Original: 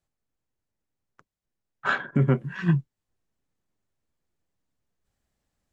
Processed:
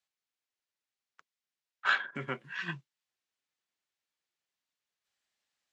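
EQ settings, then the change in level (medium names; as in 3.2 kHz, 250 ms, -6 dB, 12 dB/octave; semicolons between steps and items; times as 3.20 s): band-pass filter 3.4 kHz, Q 0.82; +3.0 dB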